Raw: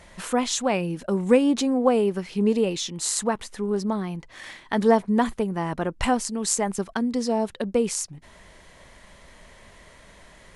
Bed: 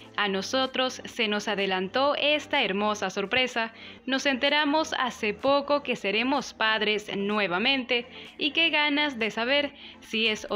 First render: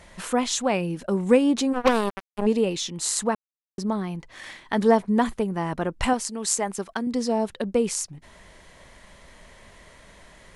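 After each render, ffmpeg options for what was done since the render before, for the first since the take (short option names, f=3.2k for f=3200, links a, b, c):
-filter_complex "[0:a]asplit=3[a][b][c];[a]afade=t=out:st=1.72:d=0.02[d];[b]acrusher=bits=2:mix=0:aa=0.5,afade=t=in:st=1.72:d=0.02,afade=t=out:st=2.45:d=0.02[e];[c]afade=t=in:st=2.45:d=0.02[f];[d][e][f]amix=inputs=3:normalize=0,asettb=1/sr,asplit=3[g][h][i];[g]atrim=end=6.134[j];[h]atrim=start=6.13:end=7.07,asetpts=PTS-STARTPTS,afade=t=in:d=0.004:c=qsin,afade=t=out:st=0.936:d=0.004:c=qsin,lowshelf=f=220:g=-9.5[k];[i]atrim=start=7.066[l];[j][k]acrossfade=d=0.004:c1=hsin:c2=qsin[m];[m][l]acrossfade=d=0.004:c1=qsin:c2=hsin,asplit=3[n][o][p];[n]atrim=end=3.35,asetpts=PTS-STARTPTS,afade=t=out:st=3.346:d=0.004:c=hsin[q];[o]atrim=start=3.35:end=3.78,asetpts=PTS-STARTPTS,volume=0[r];[p]atrim=start=3.78,asetpts=PTS-STARTPTS,afade=t=in:d=0.004:c=hsin[s];[q][r][s]concat=n=3:v=0:a=1"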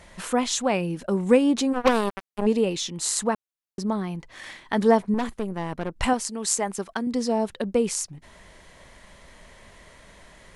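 -filter_complex "[0:a]asettb=1/sr,asplit=3[a][b][c];[a]atrim=end=5.144[d];[b]atrim=start=5.14:end=5.96,asetpts=PTS-STARTPTS,afade=t=in:d=0.004:c=qsin,afade=t=out:st=0.816:d=0.004:c=qsin,aeval=exprs='(tanh(12.6*val(0)+0.75)-tanh(0.75))/12.6':c=same[e];[c]atrim=start=5.956[f];[d][e]acrossfade=d=0.004:c1=hsin:c2=qsin[g];[g][f]acrossfade=d=0.004:c1=qsin:c2=hsin"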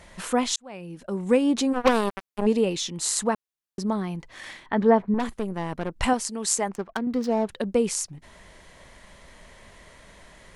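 -filter_complex "[0:a]asettb=1/sr,asplit=3[a][b][c];[a]atrim=end=4.664[d];[b]atrim=start=4.66:end=5.2,asetpts=PTS-STARTPTS,afade=t=in:d=0.004:c=qsin,afade=t=out:st=0.536:d=0.004:c=qsin,lowpass=2.2k[e];[c]atrim=start=5.196[f];[d][e]acrossfade=d=0.004:c1=hsin:c2=qsin[g];[g][f]acrossfade=d=0.004:c1=qsin:c2=hsin,asettb=1/sr,asplit=3[h][i][j];[h]atrim=end=6.684[k];[i]atrim=start=6.68:end=7.49,asetpts=PTS-STARTPTS,afade=t=in:d=0.004:c=qsin,afade=t=out:st=0.806:d=0.004:c=qsin,adynamicsmooth=sensitivity=4.5:basefreq=1.2k[l];[j]atrim=start=7.486[m];[k][l]acrossfade=d=0.004:c1=hsin:c2=qsin[n];[n][m]acrossfade=d=0.004:c1=qsin:c2=hsin,asplit=2[o][p];[o]atrim=end=0.56,asetpts=PTS-STARTPTS,afade=t=out:st=0.556:d=0.004:c=hsin[q];[p]atrim=start=0.56,asetpts=PTS-STARTPTS,afade=t=in:d=1.06[r];[q][r]concat=n=2:v=0:a=1"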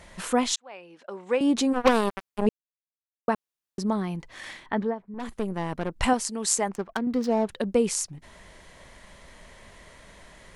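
-filter_complex "[0:a]asettb=1/sr,asplit=3[a][b][c];[a]atrim=end=0.554[d];[b]atrim=start=0.55:end=1.41,asetpts=PTS-STARTPTS,afade=t=in:d=0.004:c=qsin,afade=t=out:st=0.856:d=0.004:c=qsin,highpass=540,lowpass=4.5k[e];[c]atrim=start=1.406[f];[d][e]acrossfade=d=0.004:c1=hsin:c2=qsin[g];[g][f]acrossfade=d=0.004:c1=qsin:c2=hsin,asplit=5[h][i][j][k][l];[h]atrim=end=2.49,asetpts=PTS-STARTPTS,afade=t=out:st=2.486:d=0.004:c=hsin[m];[i]atrim=start=2.49:end=3.28,asetpts=PTS-STARTPTS,volume=0[n];[j]atrim=start=3.28:end=4.95,asetpts=PTS-STARTPTS,afade=t=in:d=0.004:c=hsin,afade=t=out:st=1.4:d=0.27:silence=0.141254[o];[k]atrim=start=4.95:end=5.13,asetpts=PTS-STARTPTS,volume=-17dB[p];[l]atrim=start=5.13,asetpts=PTS-STARTPTS,afade=t=in:d=0.27:silence=0.141254[q];[m][n][o][p][q]concat=n=5:v=0:a=1"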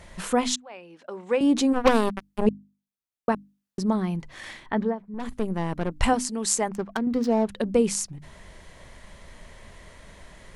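-af "lowshelf=f=220:g=6.5,bandreject=f=50:t=h:w=6,bandreject=f=100:t=h:w=6,bandreject=f=150:t=h:w=6,bandreject=f=200:t=h:w=6,bandreject=f=250:t=h:w=6,bandreject=f=300:t=h:w=6"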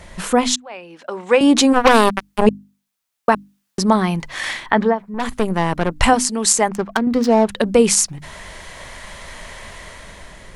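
-filter_complex "[0:a]acrossover=split=630[a][b];[b]dynaudnorm=f=290:g=7:m=9dB[c];[a][c]amix=inputs=2:normalize=0,alimiter=level_in=7dB:limit=-1dB:release=50:level=0:latency=1"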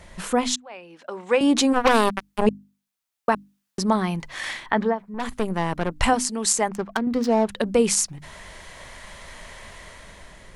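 -af "volume=-6dB"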